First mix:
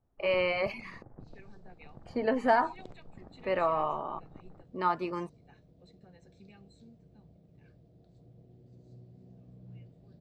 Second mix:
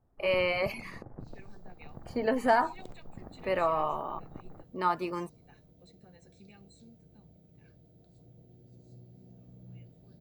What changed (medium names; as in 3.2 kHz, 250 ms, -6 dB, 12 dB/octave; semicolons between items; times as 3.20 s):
first sound +5.0 dB; master: remove distance through air 87 m